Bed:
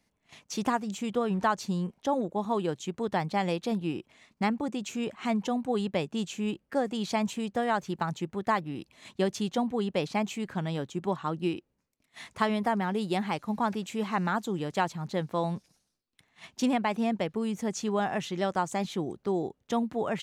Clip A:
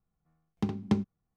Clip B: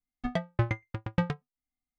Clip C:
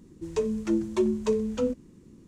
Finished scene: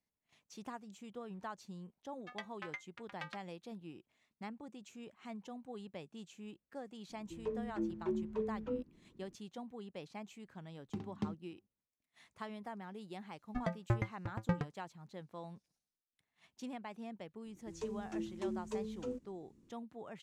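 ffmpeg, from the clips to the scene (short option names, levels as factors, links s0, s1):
-filter_complex "[2:a]asplit=2[s0][s1];[3:a]asplit=2[s2][s3];[0:a]volume=0.119[s4];[s0]highpass=1400[s5];[s2]lowpass=1900[s6];[1:a]asplit=2[s7][s8];[s8]adelay=577.3,volume=0.0316,highshelf=f=4000:g=-13[s9];[s7][s9]amix=inputs=2:normalize=0[s10];[s1]equalizer=f=3200:w=1.7:g=-9.5[s11];[s5]atrim=end=1.98,asetpts=PTS-STARTPTS,volume=0.501,afade=t=in:d=0.004:c=hsin,afade=t=out:st=1.976:d=0.004:c=hsin,adelay=2030[s12];[s6]atrim=end=2.27,asetpts=PTS-STARTPTS,volume=0.251,afade=t=in:d=0.004:c=hsin,afade=t=out:st=2.266:d=0.004:c=hsin,adelay=7090[s13];[s10]atrim=end=1.36,asetpts=PTS-STARTPTS,volume=0.251,afade=t=in:d=0.004:c=hsin,afade=t=out:st=1.356:d=0.004:c=hsin,adelay=10310[s14];[s11]atrim=end=1.98,asetpts=PTS-STARTPTS,volume=0.501,afade=t=in:d=0.004:c=hsin,afade=t=out:st=1.976:d=0.004:c=hsin,adelay=13310[s15];[s3]atrim=end=2.27,asetpts=PTS-STARTPTS,volume=0.188,afade=t=in:d=0.004:c=hsin,afade=t=out:st=2.266:d=0.004:c=hsin,adelay=17450[s16];[s4][s12][s13][s14][s15][s16]amix=inputs=6:normalize=0"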